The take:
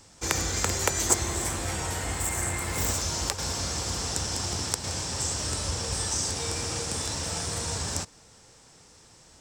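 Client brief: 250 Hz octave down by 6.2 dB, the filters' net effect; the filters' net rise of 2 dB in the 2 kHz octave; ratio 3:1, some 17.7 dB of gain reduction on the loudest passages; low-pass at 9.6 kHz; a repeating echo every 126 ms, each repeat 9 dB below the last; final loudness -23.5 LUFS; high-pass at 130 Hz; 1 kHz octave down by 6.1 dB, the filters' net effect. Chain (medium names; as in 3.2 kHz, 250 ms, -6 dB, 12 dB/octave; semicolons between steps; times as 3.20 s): high-pass 130 Hz; low-pass 9.6 kHz; peaking EQ 250 Hz -8 dB; peaking EQ 1 kHz -9 dB; peaking EQ 2 kHz +5 dB; compression 3:1, threshold -46 dBFS; feedback delay 126 ms, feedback 35%, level -9 dB; trim +18 dB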